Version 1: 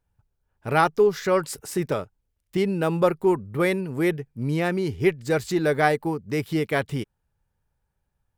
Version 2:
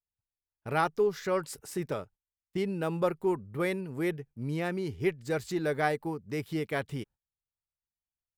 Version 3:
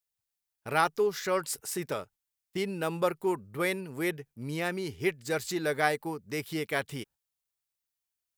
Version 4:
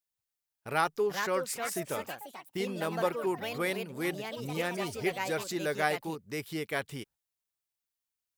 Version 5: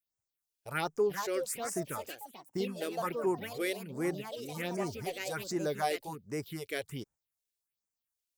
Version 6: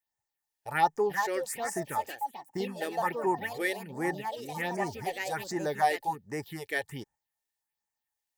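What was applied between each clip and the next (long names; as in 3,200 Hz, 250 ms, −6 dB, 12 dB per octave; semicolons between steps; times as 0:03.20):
noise gate −44 dBFS, range −20 dB; level −8 dB
spectral tilt +2 dB per octave; level +2 dB
delay with pitch and tempo change per echo 572 ms, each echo +4 semitones, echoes 3, each echo −6 dB; level −2.5 dB
all-pass phaser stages 4, 1.3 Hz, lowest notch 150–3,700 Hz
hollow resonant body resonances 850/1,800 Hz, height 16 dB, ringing for 30 ms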